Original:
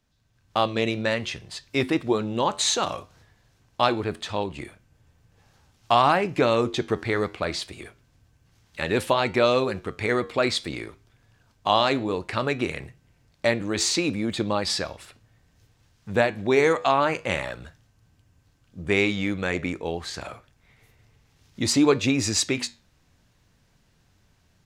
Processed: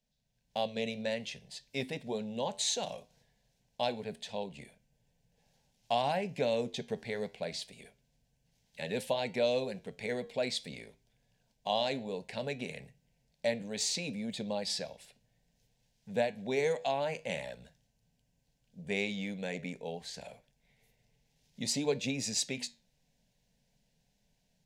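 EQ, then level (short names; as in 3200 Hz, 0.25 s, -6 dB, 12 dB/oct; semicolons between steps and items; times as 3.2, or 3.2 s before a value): fixed phaser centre 330 Hz, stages 6; -8.0 dB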